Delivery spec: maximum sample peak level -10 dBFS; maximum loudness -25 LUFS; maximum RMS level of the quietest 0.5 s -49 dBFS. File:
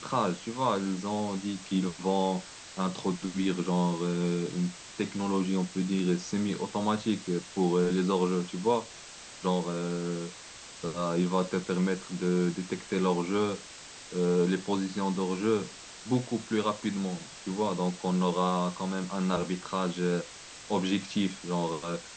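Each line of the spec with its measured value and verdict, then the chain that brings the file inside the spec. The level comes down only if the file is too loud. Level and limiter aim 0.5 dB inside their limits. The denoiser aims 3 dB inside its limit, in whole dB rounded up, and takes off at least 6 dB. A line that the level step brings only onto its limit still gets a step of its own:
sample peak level -13.5 dBFS: pass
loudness -30.5 LUFS: pass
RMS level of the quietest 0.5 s -47 dBFS: fail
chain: noise reduction 6 dB, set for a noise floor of -47 dBFS

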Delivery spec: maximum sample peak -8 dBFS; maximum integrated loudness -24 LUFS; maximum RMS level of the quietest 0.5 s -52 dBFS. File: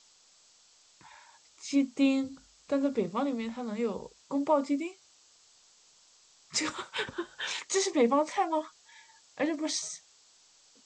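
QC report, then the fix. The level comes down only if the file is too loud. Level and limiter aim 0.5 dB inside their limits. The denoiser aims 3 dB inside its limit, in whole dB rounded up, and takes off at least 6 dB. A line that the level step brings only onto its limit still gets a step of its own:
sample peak -15.0 dBFS: pass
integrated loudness -31.0 LUFS: pass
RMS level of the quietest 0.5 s -62 dBFS: pass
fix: none needed

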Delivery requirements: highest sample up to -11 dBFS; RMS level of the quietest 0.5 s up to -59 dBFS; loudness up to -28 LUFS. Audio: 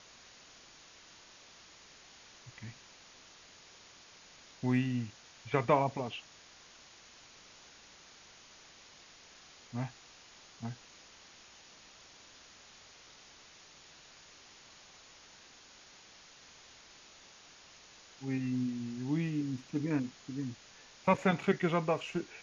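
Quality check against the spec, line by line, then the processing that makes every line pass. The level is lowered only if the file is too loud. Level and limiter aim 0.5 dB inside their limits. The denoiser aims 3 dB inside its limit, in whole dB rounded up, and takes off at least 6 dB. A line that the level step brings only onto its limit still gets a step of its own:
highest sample -14.0 dBFS: pass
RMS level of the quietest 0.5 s -57 dBFS: fail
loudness -34.5 LUFS: pass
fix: noise reduction 6 dB, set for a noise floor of -57 dBFS

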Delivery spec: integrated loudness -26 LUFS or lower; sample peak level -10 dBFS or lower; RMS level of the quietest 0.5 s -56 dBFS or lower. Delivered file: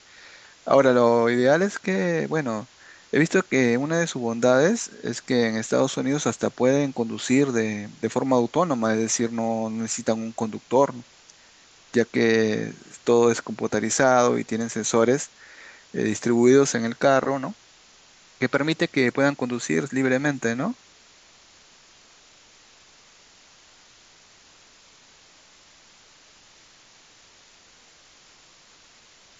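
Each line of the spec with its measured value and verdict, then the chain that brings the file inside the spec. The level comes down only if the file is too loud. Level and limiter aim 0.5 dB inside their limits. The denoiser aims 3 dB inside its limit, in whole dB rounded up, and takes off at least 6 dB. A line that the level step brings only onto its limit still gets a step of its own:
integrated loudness -22.5 LUFS: fail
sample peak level -4.5 dBFS: fail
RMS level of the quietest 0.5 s -54 dBFS: fail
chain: trim -4 dB; peak limiter -10.5 dBFS

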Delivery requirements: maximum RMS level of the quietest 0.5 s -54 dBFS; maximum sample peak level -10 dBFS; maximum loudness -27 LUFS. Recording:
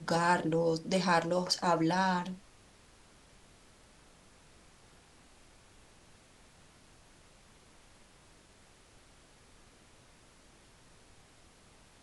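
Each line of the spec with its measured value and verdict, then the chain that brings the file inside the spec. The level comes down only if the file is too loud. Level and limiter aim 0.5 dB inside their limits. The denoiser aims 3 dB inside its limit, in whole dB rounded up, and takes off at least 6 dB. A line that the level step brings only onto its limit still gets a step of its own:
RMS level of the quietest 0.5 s -61 dBFS: pass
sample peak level -14.5 dBFS: pass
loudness -30.0 LUFS: pass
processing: none needed

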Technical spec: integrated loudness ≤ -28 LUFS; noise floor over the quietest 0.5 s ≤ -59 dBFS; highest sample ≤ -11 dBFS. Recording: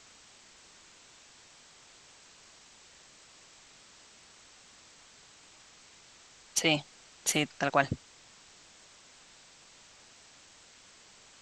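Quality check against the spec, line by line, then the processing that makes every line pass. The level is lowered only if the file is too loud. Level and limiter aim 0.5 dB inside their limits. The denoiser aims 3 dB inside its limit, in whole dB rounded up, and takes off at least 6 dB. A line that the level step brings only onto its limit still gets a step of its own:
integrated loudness -30.0 LUFS: pass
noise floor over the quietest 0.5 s -57 dBFS: fail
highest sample -8.0 dBFS: fail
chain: noise reduction 6 dB, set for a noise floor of -57 dBFS; peak limiter -11.5 dBFS

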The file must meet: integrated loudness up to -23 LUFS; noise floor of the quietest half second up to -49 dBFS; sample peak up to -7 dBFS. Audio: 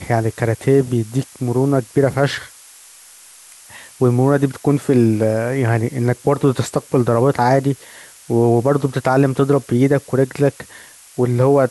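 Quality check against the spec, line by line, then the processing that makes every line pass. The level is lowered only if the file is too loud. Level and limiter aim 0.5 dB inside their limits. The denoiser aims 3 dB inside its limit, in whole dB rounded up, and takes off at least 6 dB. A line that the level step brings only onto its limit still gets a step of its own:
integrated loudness -17.0 LUFS: fail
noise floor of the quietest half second -43 dBFS: fail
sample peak -3.5 dBFS: fail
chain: trim -6.5 dB

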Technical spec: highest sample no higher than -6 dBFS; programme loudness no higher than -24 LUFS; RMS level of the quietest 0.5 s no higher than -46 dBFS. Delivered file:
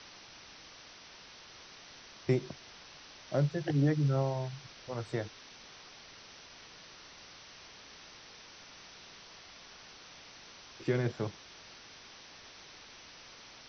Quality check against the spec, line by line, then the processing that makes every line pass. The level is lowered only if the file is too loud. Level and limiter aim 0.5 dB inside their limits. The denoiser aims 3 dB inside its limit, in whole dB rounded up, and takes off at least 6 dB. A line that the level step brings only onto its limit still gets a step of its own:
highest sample -16.5 dBFS: pass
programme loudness -33.5 LUFS: pass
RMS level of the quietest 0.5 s -53 dBFS: pass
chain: none needed

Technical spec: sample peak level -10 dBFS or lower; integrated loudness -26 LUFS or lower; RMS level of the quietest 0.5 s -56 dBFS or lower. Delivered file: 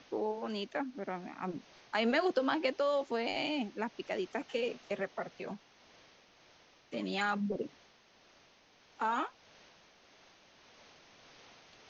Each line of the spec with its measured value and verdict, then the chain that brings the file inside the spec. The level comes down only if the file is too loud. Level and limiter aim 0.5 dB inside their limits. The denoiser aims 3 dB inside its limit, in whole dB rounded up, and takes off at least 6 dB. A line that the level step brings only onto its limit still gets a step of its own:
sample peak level -17.5 dBFS: pass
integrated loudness -35.5 LUFS: pass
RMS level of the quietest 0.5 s -64 dBFS: pass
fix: none needed

